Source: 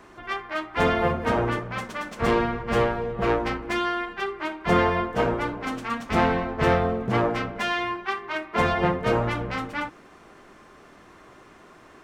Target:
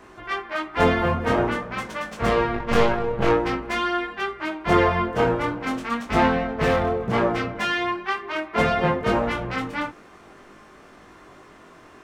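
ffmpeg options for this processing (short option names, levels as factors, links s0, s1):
-filter_complex "[0:a]asettb=1/sr,asplit=3[s0][s1][s2];[s0]atrim=end=2.544[s3];[s1]atrim=start=2.54:end=3.29,asetpts=PTS-STARTPTS,afade=t=in:d=0.004:c=qsin,afade=t=out:st=0.746:d=0.004:c=qsin,aeval=exprs='0.299*(cos(1*acos(clip(val(0)/0.299,-1,1)))-cos(1*PI/2))+0.0531*(cos(6*acos(clip(val(0)/0.299,-1,1)))-cos(6*PI/2))':c=same[s4];[s2]atrim=start=3.286[s5];[s3][s4]acrossfade=d=0.004:c1=hsin:c2=qsin[s6];[s6][s5]acrossfade=d=0.004:c1=qsin:c2=hsin,flanger=delay=18.5:depth=5.1:speed=0.46,asplit=3[s7][s8][s9];[s7]afade=t=out:st=6.42:d=0.02[s10];[s8]asoftclip=type=hard:threshold=0.0944,afade=t=in:st=6.42:d=0.02,afade=t=out:st=7.14:d=0.02[s11];[s9]afade=t=in:st=7.14:d=0.02[s12];[s10][s11][s12]amix=inputs=3:normalize=0,volume=1.78"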